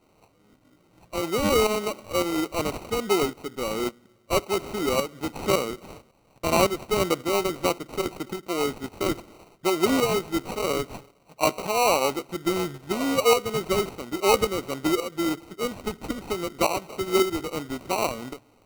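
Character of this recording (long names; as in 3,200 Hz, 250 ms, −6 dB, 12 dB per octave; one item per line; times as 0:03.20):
aliases and images of a low sample rate 1,700 Hz, jitter 0%
tremolo saw up 1.8 Hz, depth 60%
a quantiser's noise floor 12 bits, dither none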